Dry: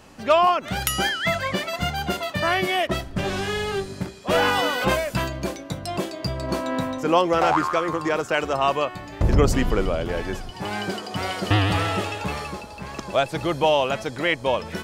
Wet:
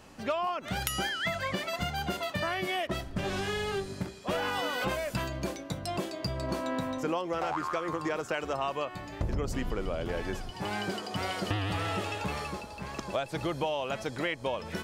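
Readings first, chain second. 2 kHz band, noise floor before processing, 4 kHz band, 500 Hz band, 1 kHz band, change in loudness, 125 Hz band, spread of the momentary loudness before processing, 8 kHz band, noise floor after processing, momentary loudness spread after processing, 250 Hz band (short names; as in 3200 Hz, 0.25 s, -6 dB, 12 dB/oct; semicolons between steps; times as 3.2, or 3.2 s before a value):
-9.0 dB, -39 dBFS, -8.5 dB, -10.0 dB, -10.5 dB, -9.5 dB, -9.5 dB, 10 LU, -8.0 dB, -45 dBFS, 5 LU, -8.5 dB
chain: compressor 10:1, threshold -23 dBFS, peak gain reduction 11.5 dB; gain -4.5 dB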